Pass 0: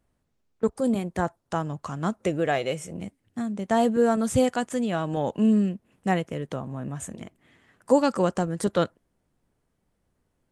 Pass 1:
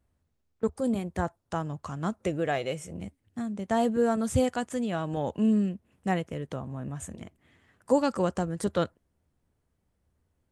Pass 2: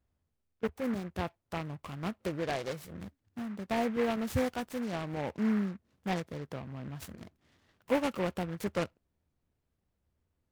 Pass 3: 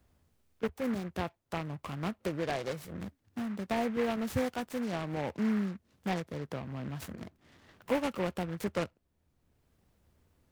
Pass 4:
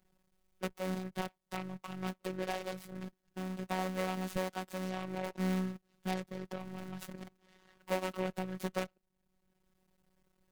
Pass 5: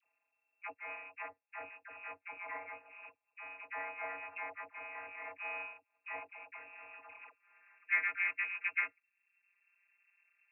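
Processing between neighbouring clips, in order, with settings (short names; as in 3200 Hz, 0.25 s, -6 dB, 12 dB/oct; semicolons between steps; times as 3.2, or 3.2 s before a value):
bell 77 Hz +10.5 dB 0.75 oct; gain -4 dB
noise-modulated delay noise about 1300 Hz, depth 0.087 ms; gain -5.5 dB
three-band squash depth 40%
cycle switcher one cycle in 3, muted; robotiser 186 Hz
inverted band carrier 2700 Hz; band-pass sweep 780 Hz -> 1700 Hz, 7.02–7.64; dispersion lows, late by 71 ms, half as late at 800 Hz; gain +6 dB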